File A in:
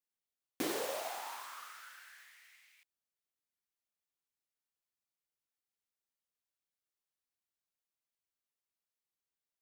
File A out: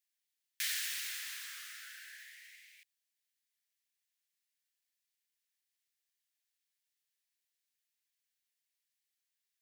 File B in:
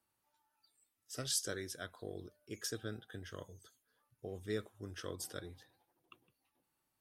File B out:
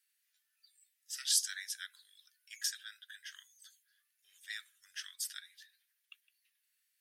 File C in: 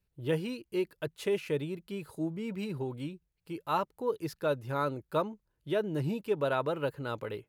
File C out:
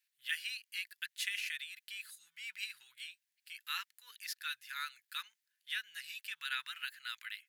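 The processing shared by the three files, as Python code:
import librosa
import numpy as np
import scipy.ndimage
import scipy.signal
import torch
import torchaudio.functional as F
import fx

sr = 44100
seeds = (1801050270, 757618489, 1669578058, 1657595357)

y = scipy.signal.sosfilt(scipy.signal.ellip(4, 1.0, 60, 1700.0, 'highpass', fs=sr, output='sos'), x)
y = y * librosa.db_to_amplitude(6.5)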